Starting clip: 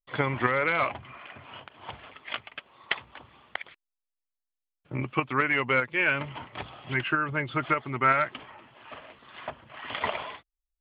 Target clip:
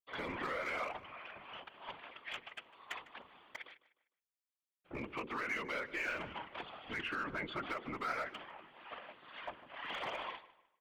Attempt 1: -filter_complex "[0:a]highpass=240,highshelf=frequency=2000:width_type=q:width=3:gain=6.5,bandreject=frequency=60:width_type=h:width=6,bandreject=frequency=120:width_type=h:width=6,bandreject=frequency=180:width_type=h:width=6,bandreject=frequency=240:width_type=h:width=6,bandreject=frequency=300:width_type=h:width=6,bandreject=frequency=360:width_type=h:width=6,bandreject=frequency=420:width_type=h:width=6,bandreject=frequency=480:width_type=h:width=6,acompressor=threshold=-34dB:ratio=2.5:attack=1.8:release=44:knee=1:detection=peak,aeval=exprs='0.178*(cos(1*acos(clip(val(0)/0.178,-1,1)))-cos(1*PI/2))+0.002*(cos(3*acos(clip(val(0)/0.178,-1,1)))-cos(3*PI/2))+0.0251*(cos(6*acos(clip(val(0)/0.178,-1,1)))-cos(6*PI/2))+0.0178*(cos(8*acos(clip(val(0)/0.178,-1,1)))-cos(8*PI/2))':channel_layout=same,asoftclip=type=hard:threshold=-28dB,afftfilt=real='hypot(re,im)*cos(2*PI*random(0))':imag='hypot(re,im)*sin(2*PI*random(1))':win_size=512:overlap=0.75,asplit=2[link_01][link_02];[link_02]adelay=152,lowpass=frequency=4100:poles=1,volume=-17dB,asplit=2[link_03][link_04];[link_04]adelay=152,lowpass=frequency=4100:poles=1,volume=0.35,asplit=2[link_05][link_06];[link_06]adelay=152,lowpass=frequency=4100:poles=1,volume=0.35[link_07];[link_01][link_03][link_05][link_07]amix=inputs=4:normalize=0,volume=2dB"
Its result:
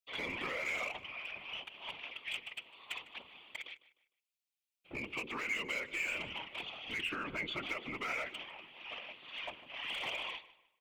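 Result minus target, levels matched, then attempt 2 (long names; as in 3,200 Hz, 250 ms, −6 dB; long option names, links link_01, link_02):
4,000 Hz band +5.0 dB
-filter_complex "[0:a]highpass=240,bandreject=frequency=60:width_type=h:width=6,bandreject=frequency=120:width_type=h:width=6,bandreject=frequency=180:width_type=h:width=6,bandreject=frequency=240:width_type=h:width=6,bandreject=frequency=300:width_type=h:width=6,bandreject=frequency=360:width_type=h:width=6,bandreject=frequency=420:width_type=h:width=6,bandreject=frequency=480:width_type=h:width=6,acompressor=threshold=-34dB:ratio=2.5:attack=1.8:release=44:knee=1:detection=peak,aeval=exprs='0.178*(cos(1*acos(clip(val(0)/0.178,-1,1)))-cos(1*PI/2))+0.002*(cos(3*acos(clip(val(0)/0.178,-1,1)))-cos(3*PI/2))+0.0251*(cos(6*acos(clip(val(0)/0.178,-1,1)))-cos(6*PI/2))+0.0178*(cos(8*acos(clip(val(0)/0.178,-1,1)))-cos(8*PI/2))':channel_layout=same,asoftclip=type=hard:threshold=-28dB,afftfilt=real='hypot(re,im)*cos(2*PI*random(0))':imag='hypot(re,im)*sin(2*PI*random(1))':win_size=512:overlap=0.75,asplit=2[link_01][link_02];[link_02]adelay=152,lowpass=frequency=4100:poles=1,volume=-17dB,asplit=2[link_03][link_04];[link_04]adelay=152,lowpass=frequency=4100:poles=1,volume=0.35,asplit=2[link_05][link_06];[link_06]adelay=152,lowpass=frequency=4100:poles=1,volume=0.35[link_07];[link_01][link_03][link_05][link_07]amix=inputs=4:normalize=0,volume=2dB"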